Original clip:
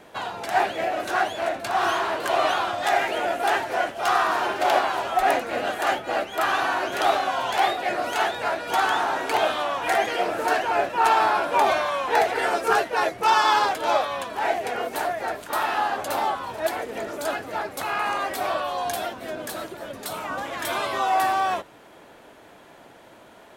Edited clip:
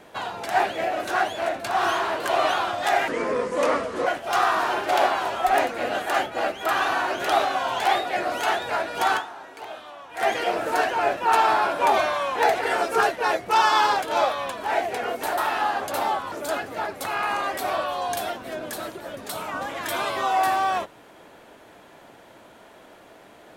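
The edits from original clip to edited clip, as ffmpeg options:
ffmpeg -i in.wav -filter_complex "[0:a]asplit=7[link_01][link_02][link_03][link_04][link_05][link_06][link_07];[link_01]atrim=end=3.084[link_08];[link_02]atrim=start=3.08:end=3.79,asetpts=PTS-STARTPTS,asetrate=31752,aresample=44100[link_09];[link_03]atrim=start=3.786:end=9.22,asetpts=PTS-STARTPTS,afade=type=out:start_time=5.104:duration=0.33:curve=exp:silence=0.16788[link_10];[link_04]atrim=start=9.22:end=9.63,asetpts=PTS-STARTPTS,volume=-15.5dB[link_11];[link_05]atrim=start=9.63:end=15.102,asetpts=PTS-STARTPTS,afade=type=in:duration=0.33:curve=exp:silence=0.16788[link_12];[link_06]atrim=start=15.538:end=16.482[link_13];[link_07]atrim=start=17.078[link_14];[link_08][link_09]acrossfade=duration=0.004:curve1=hsin:curve2=hsin[link_15];[link_10][link_11][link_12]concat=n=3:v=0:a=1[link_16];[link_15][link_16]acrossfade=duration=0.004:curve1=hsin:curve2=hsin[link_17];[link_17][link_13]acrossfade=duration=0.004:curve1=hsin:curve2=hsin[link_18];[link_18][link_14]acrossfade=duration=0.004:curve1=hsin:curve2=hsin" out.wav

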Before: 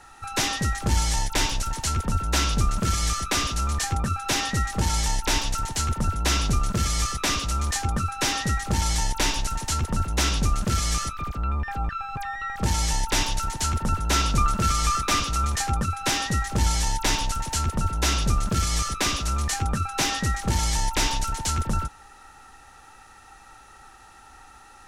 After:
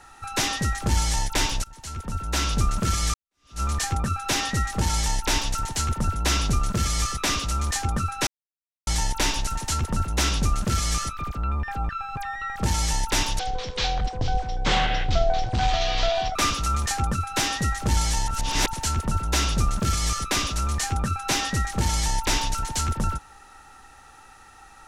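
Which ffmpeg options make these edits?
ffmpeg -i in.wav -filter_complex "[0:a]asplit=9[link_01][link_02][link_03][link_04][link_05][link_06][link_07][link_08][link_09];[link_01]atrim=end=1.64,asetpts=PTS-STARTPTS,afade=type=out:start_time=1.636:duration=0.004:curve=hsin:silence=0.0794328[link_10];[link_02]atrim=start=1.64:end=3.14,asetpts=PTS-STARTPTS,afade=type=in:duration=0.97:silence=0.0794328,afade=type=out:start_time=1.496:duration=0.004:curve=hsin[link_11];[link_03]atrim=start=3.14:end=8.27,asetpts=PTS-STARTPTS,afade=type=in:duration=0.47:curve=exp,afade=type=out:start_time=5.126:duration=0.004:curve=hsin[link_12];[link_04]atrim=start=8.27:end=8.87,asetpts=PTS-STARTPTS,volume=0[link_13];[link_05]atrim=start=8.87:end=13.394,asetpts=PTS-STARTPTS,afade=type=in:duration=0.004:curve=hsin[link_14];[link_06]atrim=start=13.39:end=15.05,asetpts=PTS-STARTPTS,asetrate=24696,aresample=44100[link_15];[link_07]atrim=start=15.046:end=16.972[link_16];[link_08]atrim=start=16.968:end=17.432,asetpts=PTS-STARTPTS,areverse[link_17];[link_09]atrim=start=17.428[link_18];[link_10][link_11][link_12][link_13][link_14]concat=n=5:v=0:a=1[link_19];[link_19][link_15]acrossfade=duration=0.004:curve1=hsin:curve2=hsin[link_20];[link_20][link_16]acrossfade=duration=0.004:curve1=hsin:curve2=hsin[link_21];[link_21][link_17]acrossfade=duration=0.004:curve1=hsin:curve2=hsin[link_22];[link_22][link_18]acrossfade=duration=0.004:curve1=hsin:curve2=hsin" out.wav

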